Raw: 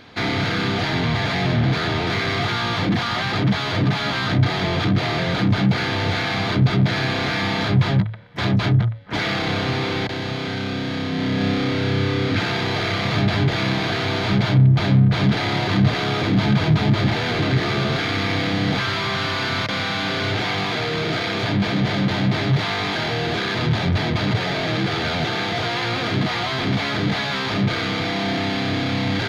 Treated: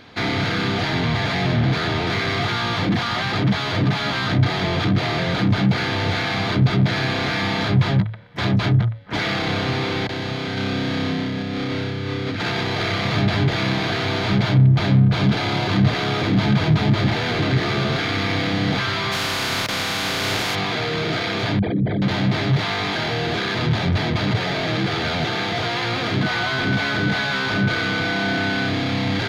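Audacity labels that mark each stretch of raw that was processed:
10.570000	12.820000	compressor with a negative ratio -24 dBFS
15.020000	15.750000	band-stop 1.9 kHz
19.110000	20.540000	spectral contrast reduction exponent 0.55
21.590000	22.020000	resonances exaggerated exponent 3
26.220000	28.670000	whistle 1.5 kHz -25 dBFS

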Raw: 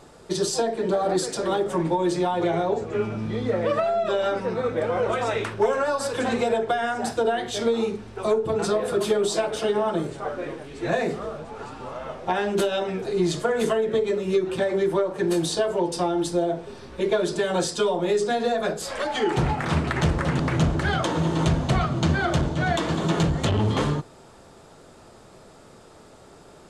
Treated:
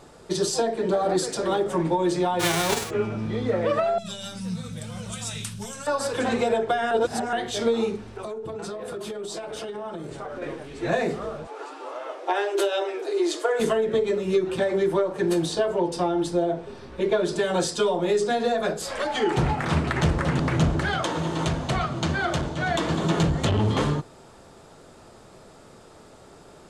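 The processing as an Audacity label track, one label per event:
2.390000	2.890000	formants flattened exponent 0.3
3.980000	5.870000	FFT filter 120 Hz 0 dB, 180 Hz +7 dB, 340 Hz -23 dB, 2 kHz -12 dB, 3.1 kHz 0 dB, 5.8 kHz +8 dB, 9.9 kHz +15 dB
6.910000	7.330000	reverse
8.140000	10.420000	compression 10:1, threshold -30 dBFS
11.470000	13.600000	brick-wall FIR high-pass 270 Hz
15.340000	17.290000	treble shelf 4.8 kHz -6.5 dB
20.850000	22.750000	bass shelf 380 Hz -6 dB

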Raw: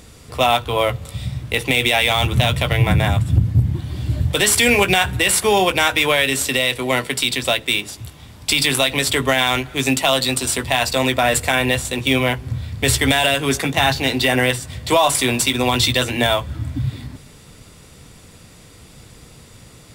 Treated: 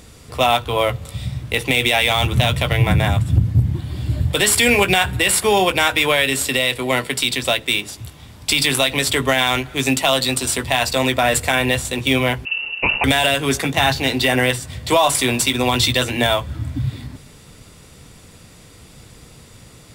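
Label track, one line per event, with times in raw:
3.790000	7.140000	band-stop 6 kHz
12.450000	13.040000	frequency inversion carrier 2.8 kHz

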